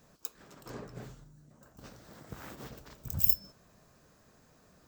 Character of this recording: noise floor -64 dBFS; spectral tilt -2.0 dB/octave

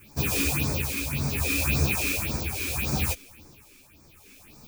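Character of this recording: phasing stages 4, 1.8 Hz, lowest notch 120–2900 Hz; tremolo triangle 0.7 Hz, depth 55%; a shimmering, thickened sound

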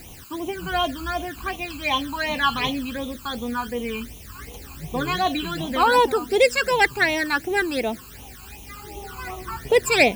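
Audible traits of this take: a quantiser's noise floor 8-bit, dither triangular; phasing stages 12, 2.7 Hz, lowest notch 600–1600 Hz

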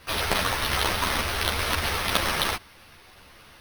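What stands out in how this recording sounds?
aliases and images of a low sample rate 7.3 kHz, jitter 0%; a shimmering, thickened sound

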